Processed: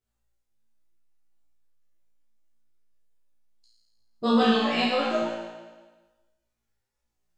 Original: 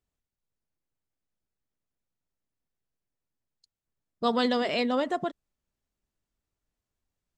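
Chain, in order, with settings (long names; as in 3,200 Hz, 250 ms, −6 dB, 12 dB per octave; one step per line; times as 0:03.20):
pitch shifter gated in a rhythm −2 semitones, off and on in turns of 294 ms
flutter between parallel walls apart 3 metres, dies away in 1.3 s
multi-voice chorus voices 6, 1 Hz, delay 11 ms, depth 3 ms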